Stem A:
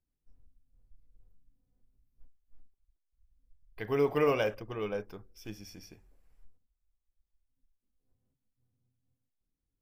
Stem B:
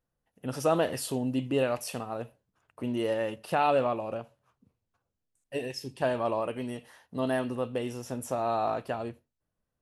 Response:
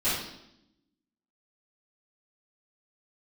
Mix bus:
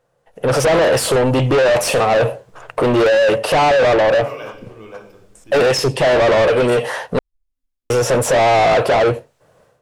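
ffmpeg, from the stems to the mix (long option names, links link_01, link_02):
-filter_complex "[0:a]acrossover=split=480[link_01][link_02];[link_01]aeval=exprs='val(0)*(1-0.7/2+0.7/2*cos(2*PI*1.5*n/s))':channel_layout=same[link_03];[link_02]aeval=exprs='val(0)*(1-0.7/2-0.7/2*cos(2*PI*1.5*n/s))':channel_layout=same[link_04];[link_03][link_04]amix=inputs=2:normalize=0,volume=-0.5dB,asplit=2[link_05][link_06];[link_06]volume=-13dB[link_07];[1:a]equalizer=frequency=125:width_type=o:width=1:gain=10,equalizer=frequency=250:width_type=o:width=1:gain=-7,equalizer=frequency=500:width_type=o:width=1:gain=10,equalizer=frequency=8000:width_type=o:width=1:gain=6,dynaudnorm=framelen=260:gausssize=3:maxgain=15dB,asplit=2[link_08][link_09];[link_09]highpass=frequency=720:poles=1,volume=27dB,asoftclip=type=tanh:threshold=-0.5dB[link_10];[link_08][link_10]amix=inputs=2:normalize=0,lowpass=frequency=1600:poles=1,volume=-6dB,volume=1.5dB,asplit=3[link_11][link_12][link_13];[link_11]atrim=end=7.19,asetpts=PTS-STARTPTS,afade=type=out:start_time=7.186:duration=0.004:curve=hsin[link_14];[link_12]atrim=start=7.19:end=7.9,asetpts=PTS-STARTPTS,volume=0[link_15];[link_13]atrim=start=7.9,asetpts=PTS-STARTPTS,afade=type=in:duration=0.004:curve=hsin[link_16];[link_14][link_15][link_16]concat=n=3:v=0:a=1,asplit=2[link_17][link_18];[link_18]apad=whole_len=432700[link_19];[link_05][link_19]sidechaincompress=threshold=-11dB:ratio=8:attack=16:release=1020[link_20];[2:a]atrim=start_sample=2205[link_21];[link_07][link_21]afir=irnorm=-1:irlink=0[link_22];[link_20][link_17][link_22]amix=inputs=3:normalize=0,asoftclip=type=tanh:threshold=-11dB"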